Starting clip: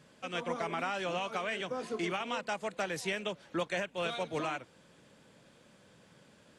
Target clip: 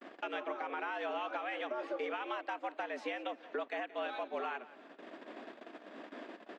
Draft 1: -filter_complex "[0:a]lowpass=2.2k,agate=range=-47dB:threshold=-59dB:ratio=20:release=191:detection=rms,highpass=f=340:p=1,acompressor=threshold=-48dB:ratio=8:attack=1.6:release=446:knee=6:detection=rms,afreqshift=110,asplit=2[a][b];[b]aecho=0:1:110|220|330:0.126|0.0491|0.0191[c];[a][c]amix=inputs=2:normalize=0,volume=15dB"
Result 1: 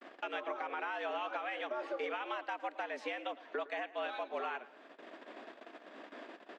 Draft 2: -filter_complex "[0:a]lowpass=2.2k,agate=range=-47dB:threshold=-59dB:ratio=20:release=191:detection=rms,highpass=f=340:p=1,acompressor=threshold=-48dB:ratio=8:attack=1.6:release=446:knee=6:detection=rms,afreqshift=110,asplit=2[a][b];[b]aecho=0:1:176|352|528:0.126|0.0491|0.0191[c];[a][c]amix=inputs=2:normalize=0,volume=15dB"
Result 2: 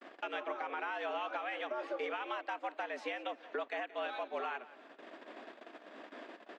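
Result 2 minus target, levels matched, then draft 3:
250 Hz band -3.5 dB
-filter_complex "[0:a]lowpass=2.2k,agate=range=-47dB:threshold=-59dB:ratio=20:release=191:detection=rms,highpass=f=150:p=1,acompressor=threshold=-48dB:ratio=8:attack=1.6:release=446:knee=6:detection=rms,afreqshift=110,asplit=2[a][b];[b]aecho=0:1:176|352|528:0.126|0.0491|0.0191[c];[a][c]amix=inputs=2:normalize=0,volume=15dB"

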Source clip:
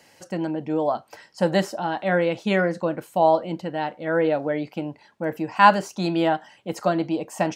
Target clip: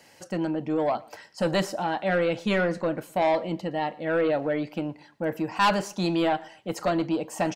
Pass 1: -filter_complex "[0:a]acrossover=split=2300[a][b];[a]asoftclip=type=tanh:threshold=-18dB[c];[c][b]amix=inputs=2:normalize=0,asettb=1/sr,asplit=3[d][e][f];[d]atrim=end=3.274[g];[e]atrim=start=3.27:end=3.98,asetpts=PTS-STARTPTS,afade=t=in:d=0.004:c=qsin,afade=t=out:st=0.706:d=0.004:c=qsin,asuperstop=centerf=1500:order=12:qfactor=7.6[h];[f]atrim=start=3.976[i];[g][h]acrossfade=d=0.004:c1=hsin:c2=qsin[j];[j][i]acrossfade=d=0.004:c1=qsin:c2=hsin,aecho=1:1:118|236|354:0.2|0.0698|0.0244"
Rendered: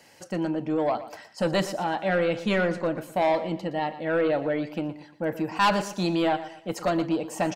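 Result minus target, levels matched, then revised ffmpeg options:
echo-to-direct +9 dB
-filter_complex "[0:a]acrossover=split=2300[a][b];[a]asoftclip=type=tanh:threshold=-18dB[c];[c][b]amix=inputs=2:normalize=0,asettb=1/sr,asplit=3[d][e][f];[d]atrim=end=3.274[g];[e]atrim=start=3.27:end=3.98,asetpts=PTS-STARTPTS,afade=t=in:d=0.004:c=qsin,afade=t=out:st=0.706:d=0.004:c=qsin,asuperstop=centerf=1500:order=12:qfactor=7.6[h];[f]atrim=start=3.976[i];[g][h]acrossfade=d=0.004:c1=hsin:c2=qsin[j];[j][i]acrossfade=d=0.004:c1=qsin:c2=hsin,aecho=1:1:118|236:0.0708|0.0248"

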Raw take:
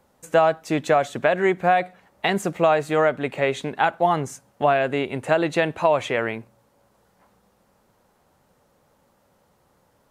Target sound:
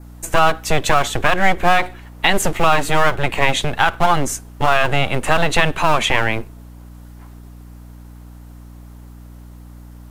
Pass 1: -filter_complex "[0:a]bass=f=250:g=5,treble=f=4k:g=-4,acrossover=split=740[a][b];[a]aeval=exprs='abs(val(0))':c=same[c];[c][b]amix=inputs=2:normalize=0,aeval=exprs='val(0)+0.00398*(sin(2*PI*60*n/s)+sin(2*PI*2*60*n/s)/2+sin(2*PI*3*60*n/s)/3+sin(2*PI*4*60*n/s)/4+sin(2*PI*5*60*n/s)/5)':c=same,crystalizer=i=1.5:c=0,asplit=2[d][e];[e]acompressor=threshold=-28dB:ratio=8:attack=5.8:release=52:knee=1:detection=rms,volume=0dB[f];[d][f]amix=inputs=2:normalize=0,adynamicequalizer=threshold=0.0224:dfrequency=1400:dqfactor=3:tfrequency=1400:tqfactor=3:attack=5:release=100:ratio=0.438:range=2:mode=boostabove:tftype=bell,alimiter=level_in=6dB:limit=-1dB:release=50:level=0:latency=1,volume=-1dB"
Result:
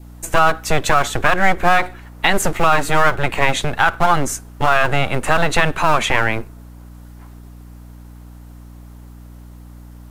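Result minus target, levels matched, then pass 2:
4000 Hz band -2.5 dB
-filter_complex "[0:a]bass=f=250:g=5,treble=f=4k:g=-4,acrossover=split=740[a][b];[a]aeval=exprs='abs(val(0))':c=same[c];[c][b]amix=inputs=2:normalize=0,aeval=exprs='val(0)+0.00398*(sin(2*PI*60*n/s)+sin(2*PI*2*60*n/s)/2+sin(2*PI*3*60*n/s)/3+sin(2*PI*4*60*n/s)/4+sin(2*PI*5*60*n/s)/5)':c=same,crystalizer=i=1.5:c=0,asplit=2[d][e];[e]acompressor=threshold=-28dB:ratio=8:attack=5.8:release=52:knee=1:detection=rms,volume=0dB[f];[d][f]amix=inputs=2:normalize=0,adynamicequalizer=threshold=0.0224:dfrequency=3100:dqfactor=3:tfrequency=3100:tqfactor=3:attack=5:release=100:ratio=0.438:range=2:mode=boostabove:tftype=bell,alimiter=level_in=6dB:limit=-1dB:release=50:level=0:latency=1,volume=-1dB"

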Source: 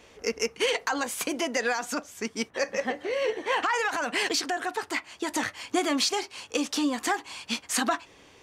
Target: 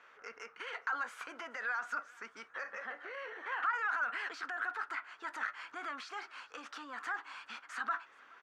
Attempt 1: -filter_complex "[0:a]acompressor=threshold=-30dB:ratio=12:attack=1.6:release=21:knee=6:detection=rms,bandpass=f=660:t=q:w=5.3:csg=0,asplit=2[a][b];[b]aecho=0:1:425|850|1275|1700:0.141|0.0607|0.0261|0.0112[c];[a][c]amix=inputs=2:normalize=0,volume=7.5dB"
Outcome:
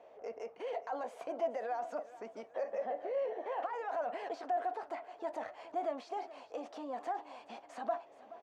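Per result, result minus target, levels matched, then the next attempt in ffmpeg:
500 Hz band +15.0 dB; echo-to-direct +8 dB
-filter_complex "[0:a]acompressor=threshold=-30dB:ratio=12:attack=1.6:release=21:knee=6:detection=rms,bandpass=f=1.4k:t=q:w=5.3:csg=0,asplit=2[a][b];[b]aecho=0:1:425|850|1275|1700:0.141|0.0607|0.0261|0.0112[c];[a][c]amix=inputs=2:normalize=0,volume=7.5dB"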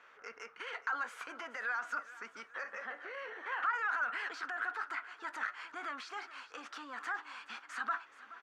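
echo-to-direct +8 dB
-filter_complex "[0:a]acompressor=threshold=-30dB:ratio=12:attack=1.6:release=21:knee=6:detection=rms,bandpass=f=1.4k:t=q:w=5.3:csg=0,asplit=2[a][b];[b]aecho=0:1:425|850|1275:0.0562|0.0242|0.0104[c];[a][c]amix=inputs=2:normalize=0,volume=7.5dB"

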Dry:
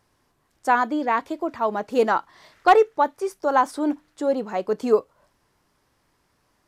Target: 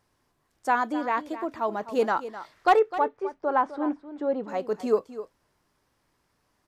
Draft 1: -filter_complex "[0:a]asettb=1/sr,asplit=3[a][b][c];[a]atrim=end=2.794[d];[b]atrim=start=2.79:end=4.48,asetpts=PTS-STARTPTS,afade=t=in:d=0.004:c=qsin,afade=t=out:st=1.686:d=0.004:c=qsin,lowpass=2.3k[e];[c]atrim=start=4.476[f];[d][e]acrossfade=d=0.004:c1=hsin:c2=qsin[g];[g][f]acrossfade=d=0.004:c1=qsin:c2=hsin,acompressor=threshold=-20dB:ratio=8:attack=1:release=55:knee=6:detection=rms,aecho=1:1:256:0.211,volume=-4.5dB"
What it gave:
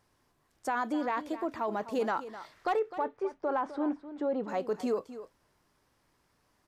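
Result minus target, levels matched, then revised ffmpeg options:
compressor: peak gain reduction +12 dB
-filter_complex "[0:a]asettb=1/sr,asplit=3[a][b][c];[a]atrim=end=2.794[d];[b]atrim=start=2.79:end=4.48,asetpts=PTS-STARTPTS,afade=t=in:d=0.004:c=qsin,afade=t=out:st=1.686:d=0.004:c=qsin,lowpass=2.3k[e];[c]atrim=start=4.476[f];[d][e]acrossfade=d=0.004:c1=hsin:c2=qsin[g];[g][f]acrossfade=d=0.004:c1=qsin:c2=hsin,aecho=1:1:256:0.211,volume=-4.5dB"

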